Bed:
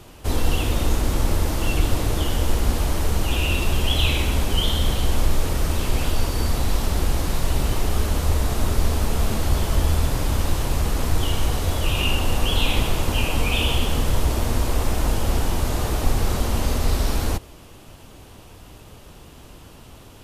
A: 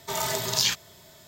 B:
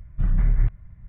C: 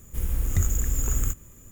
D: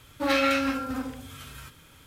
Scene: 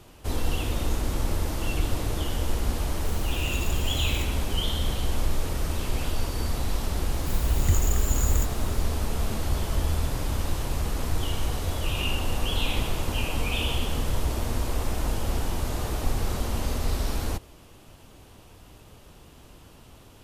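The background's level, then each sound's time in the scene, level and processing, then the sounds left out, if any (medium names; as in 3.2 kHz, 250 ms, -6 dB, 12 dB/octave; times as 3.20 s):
bed -6 dB
2.91 s: add C -8.5 dB
7.12 s: add C -0.5 dB
not used: A, B, D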